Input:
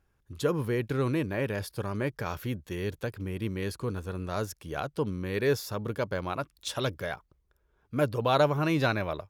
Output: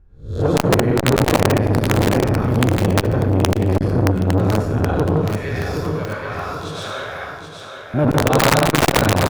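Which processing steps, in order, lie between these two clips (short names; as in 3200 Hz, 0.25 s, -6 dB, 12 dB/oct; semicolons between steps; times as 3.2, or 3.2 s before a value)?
spectral swells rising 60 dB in 0.37 s; 5.03–7.94 HPF 1100 Hz 12 dB/oct; tilt -4 dB/oct; reverb RT60 1.0 s, pre-delay 94 ms, DRR -6 dB; wrapped overs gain 6.5 dB; feedback echo 0.774 s, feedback 37%, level -7 dB; core saturation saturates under 530 Hz; gain +3 dB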